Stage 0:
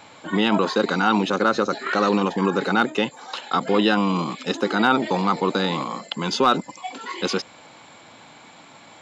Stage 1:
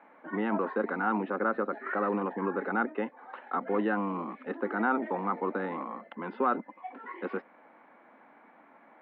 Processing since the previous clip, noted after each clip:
elliptic band-pass filter 220–1,900 Hz, stop band 50 dB
level −8.5 dB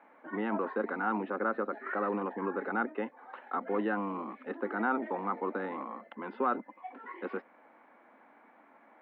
parametric band 170 Hz −8.5 dB 0.25 octaves
level −2.5 dB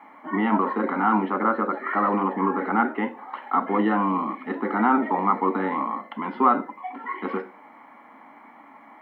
convolution reverb RT60 0.35 s, pre-delay 3 ms, DRR 8.5 dB
level +8 dB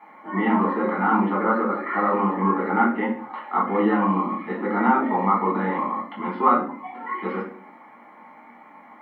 rectangular room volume 39 cubic metres, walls mixed, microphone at 0.86 metres
level −4.5 dB

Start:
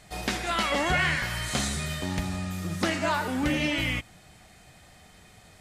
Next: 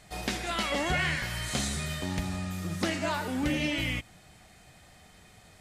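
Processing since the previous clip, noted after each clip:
dynamic equaliser 1,200 Hz, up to −4 dB, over −37 dBFS, Q 0.99
level −2 dB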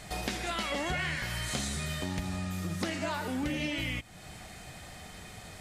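downward compressor 2.5 to 1, threshold −45 dBFS, peak gain reduction 14 dB
level +8.5 dB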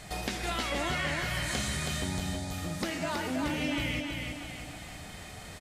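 time-frequency box erased 0:02.05–0:02.51, 1,000–3,300 Hz
repeating echo 323 ms, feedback 47%, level −4 dB

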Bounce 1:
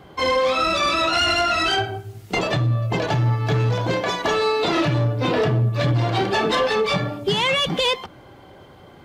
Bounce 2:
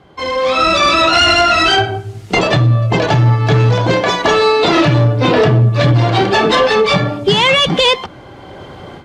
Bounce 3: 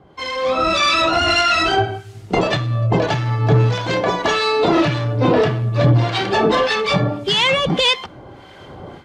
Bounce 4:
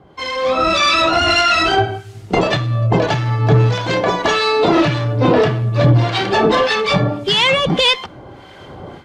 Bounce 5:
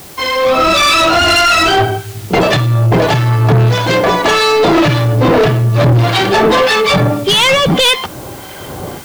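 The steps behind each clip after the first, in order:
low-pass filter 8,500 Hz 12 dB per octave; automatic gain control gain up to 16 dB; level −1 dB
two-band tremolo in antiphase 1.7 Hz, depth 70%, crossover 1,200 Hz; level −1.5 dB
harmonic generator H 2 −21 dB, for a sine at −4 dBFS; level +2 dB
background noise white −44 dBFS; soft clipping −14.5 dBFS, distortion −11 dB; level +8.5 dB

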